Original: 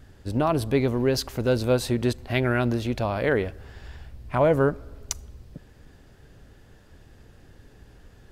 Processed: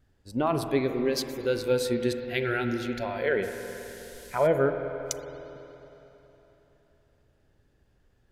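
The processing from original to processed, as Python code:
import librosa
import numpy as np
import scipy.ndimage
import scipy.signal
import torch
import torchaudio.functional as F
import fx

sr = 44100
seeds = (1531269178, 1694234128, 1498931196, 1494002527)

y = fx.noise_reduce_blind(x, sr, reduce_db=14)
y = fx.dmg_noise_band(y, sr, seeds[0], low_hz=2700.0, high_hz=13000.0, level_db=-49.0, at=(3.42, 4.46), fade=0.02)
y = fx.rev_spring(y, sr, rt60_s=3.6, pass_ms=(46, 52), chirp_ms=75, drr_db=6.5)
y = y * 10.0 ** (-2.5 / 20.0)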